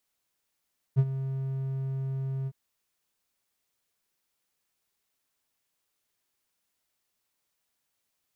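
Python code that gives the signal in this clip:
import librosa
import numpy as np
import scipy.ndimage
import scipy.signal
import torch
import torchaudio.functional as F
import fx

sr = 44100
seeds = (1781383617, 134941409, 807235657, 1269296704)

y = fx.adsr_tone(sr, wave='triangle', hz=134.0, attack_ms=30.0, decay_ms=52.0, sustain_db=-13.0, held_s=1.51, release_ms=48.0, level_db=-14.0)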